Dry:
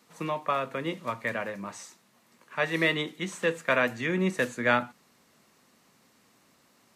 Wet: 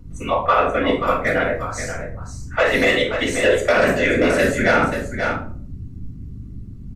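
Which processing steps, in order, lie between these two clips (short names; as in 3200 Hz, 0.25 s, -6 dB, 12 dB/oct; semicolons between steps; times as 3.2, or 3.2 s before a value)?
elliptic high-pass 230 Hz; spectral noise reduction 20 dB; hum 50 Hz, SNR 17 dB; soft clip -19 dBFS, distortion -15 dB; whisperiser; echo 0.531 s -9.5 dB; reverb RT60 0.50 s, pre-delay 3 ms, DRR -1 dB; maximiser +14 dB; gain -5 dB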